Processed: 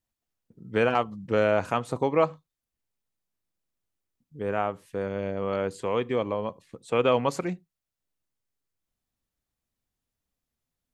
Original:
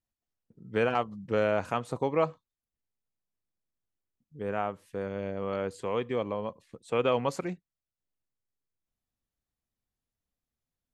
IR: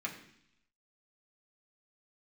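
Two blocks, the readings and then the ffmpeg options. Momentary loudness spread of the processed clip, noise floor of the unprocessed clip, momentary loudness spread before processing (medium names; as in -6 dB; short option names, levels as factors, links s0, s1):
10 LU, under -85 dBFS, 10 LU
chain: -filter_complex "[0:a]asplit=2[s0][s1];[s1]equalizer=f=1700:t=o:w=0.77:g=-11.5[s2];[1:a]atrim=start_sample=2205,atrim=end_sample=3528,asetrate=37926,aresample=44100[s3];[s2][s3]afir=irnorm=-1:irlink=0,volume=0.112[s4];[s0][s4]amix=inputs=2:normalize=0,volume=1.5"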